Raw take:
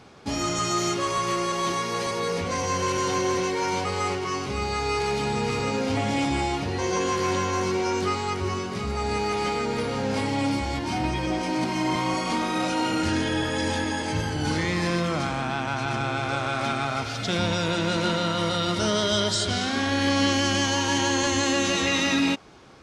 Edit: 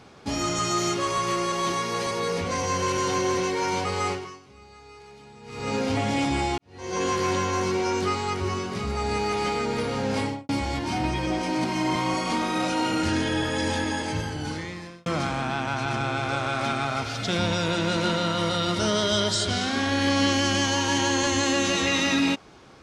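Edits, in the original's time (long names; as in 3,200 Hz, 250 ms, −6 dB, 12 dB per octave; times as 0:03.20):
0:04.10–0:05.73: duck −21.5 dB, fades 0.35 s quadratic
0:06.58–0:07.03: fade in quadratic
0:10.21–0:10.49: fade out and dull
0:13.96–0:15.06: fade out linear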